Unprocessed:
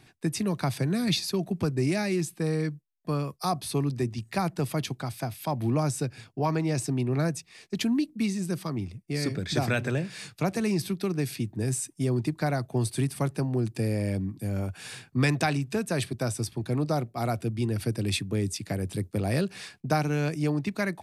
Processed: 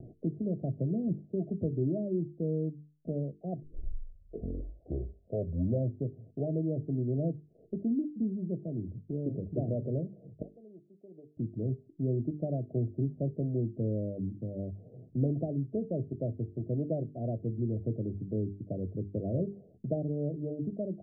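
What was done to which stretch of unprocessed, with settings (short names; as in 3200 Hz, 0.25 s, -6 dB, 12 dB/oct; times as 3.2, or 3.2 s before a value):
3.62 tape start 2.56 s
10.42–11.37 differentiator
whole clip: upward compressor, threshold -28 dBFS; steep low-pass 660 Hz 96 dB/oct; notches 50/100/150/200/250/300/350/400/450 Hz; gain -3.5 dB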